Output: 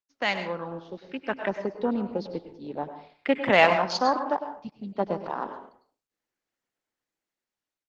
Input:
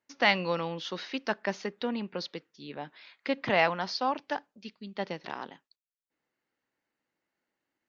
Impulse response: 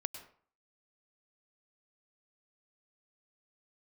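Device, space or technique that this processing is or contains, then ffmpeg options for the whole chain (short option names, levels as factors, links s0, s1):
far-field microphone of a smart speaker: -filter_complex "[0:a]afwtdn=0.0178[s0];[1:a]atrim=start_sample=2205[s1];[s0][s1]afir=irnorm=-1:irlink=0,highpass=150,dynaudnorm=f=590:g=5:m=5.62,volume=0.841" -ar 48000 -c:a libopus -b:a 16k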